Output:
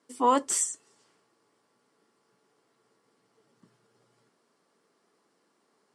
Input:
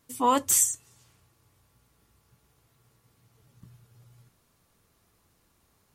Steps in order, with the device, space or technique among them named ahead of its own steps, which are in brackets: television speaker (cabinet simulation 220–8100 Hz, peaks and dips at 420 Hz +5 dB, 2.5 kHz -6 dB, 3.7 kHz -6 dB, 6.5 kHz -8 dB)

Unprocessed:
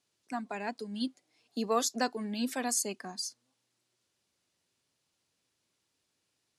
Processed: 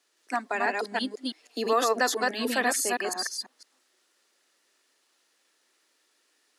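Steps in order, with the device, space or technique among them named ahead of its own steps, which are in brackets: chunks repeated in reverse 165 ms, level -1.5 dB; laptop speaker (high-pass 300 Hz 24 dB/octave; peaking EQ 1.3 kHz +5 dB 0.28 oct; peaking EQ 1.8 kHz +8 dB 0.24 oct; peak limiter -21 dBFS, peak gain reduction 6 dB); dynamic bell 6.7 kHz, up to -6 dB, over -49 dBFS, Q 1.2; trim +7.5 dB

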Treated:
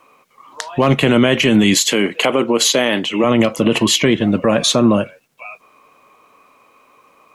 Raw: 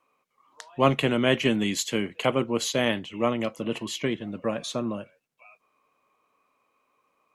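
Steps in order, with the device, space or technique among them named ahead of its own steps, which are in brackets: loud club master (compression 2:1, threshold -25 dBFS, peak gain reduction 6.5 dB; hard clipper -14 dBFS, distortion -33 dB; loudness maximiser +22.5 dB); 1.74–3.24 s: high-pass 240 Hz 12 dB/octave; trim -3 dB

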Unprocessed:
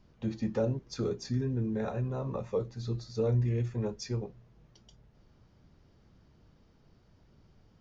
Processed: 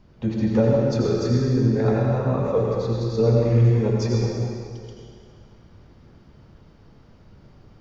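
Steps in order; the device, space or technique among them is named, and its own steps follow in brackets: swimming-pool hall (reverberation RT60 2.3 s, pre-delay 77 ms, DRR -2.5 dB; treble shelf 4.5 kHz -7 dB); trim +8.5 dB

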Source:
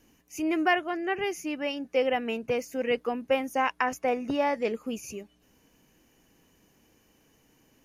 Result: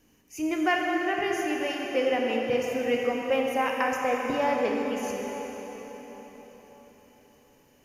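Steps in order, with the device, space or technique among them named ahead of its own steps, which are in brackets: cathedral (reverberation RT60 4.8 s, pre-delay 16 ms, DRR -1 dB); trim -1.5 dB

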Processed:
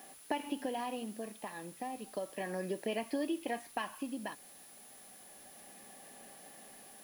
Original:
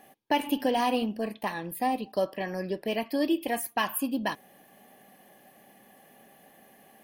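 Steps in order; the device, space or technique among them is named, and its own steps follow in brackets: medium wave at night (band-pass 170–3800 Hz; compression, threshold -32 dBFS, peak gain reduction 11.5 dB; tremolo 0.32 Hz, depth 56%; whistle 10 kHz -56 dBFS; white noise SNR 18 dB)

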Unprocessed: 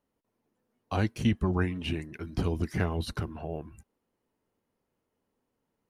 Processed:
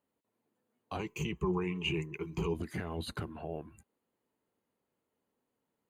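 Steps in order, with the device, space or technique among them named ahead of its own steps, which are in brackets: PA system with an anti-feedback notch (high-pass 140 Hz 6 dB/octave; Butterworth band-stop 5.5 kHz, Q 4.4; peak limiter -24.5 dBFS, peak gain reduction 9.5 dB); 0.99–2.54 s: rippled EQ curve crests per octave 0.75, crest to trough 17 dB; trim -2.5 dB

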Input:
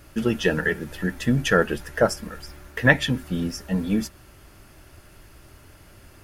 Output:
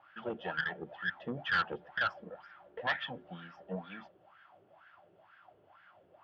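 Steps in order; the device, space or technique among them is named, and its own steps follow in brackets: wah-wah guitar rig (wah-wah 2.1 Hz 420–1600 Hz, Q 7.3; valve stage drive 30 dB, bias 0.25; cabinet simulation 90–4200 Hz, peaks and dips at 100 Hz +6 dB, 170 Hz +9 dB, 260 Hz -5 dB, 430 Hz -8 dB, 740 Hz +7 dB, 3.2 kHz +10 dB); trim +4.5 dB

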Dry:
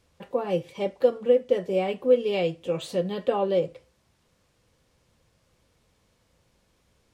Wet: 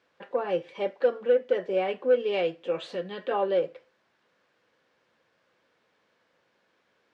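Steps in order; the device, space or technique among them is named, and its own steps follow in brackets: intercom (band-pass 320–3600 Hz; peaking EQ 1.6 kHz +7 dB 0.47 oct; saturation -13 dBFS, distortion -18 dB); 2.84–3.31 s: dynamic bell 610 Hz, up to -6 dB, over -38 dBFS, Q 0.71

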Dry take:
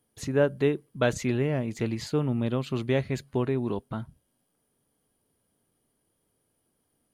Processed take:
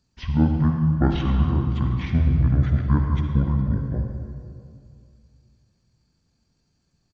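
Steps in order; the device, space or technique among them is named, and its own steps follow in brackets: 0.59–2.07 s: hum notches 50/100/150/200/250/300/350/400/450/500 Hz; monster voice (pitch shift -10.5 st; formant shift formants -2.5 st; bass shelf 170 Hz +6 dB; reverberation RT60 2.3 s, pre-delay 49 ms, DRR 3 dB); trim +1.5 dB

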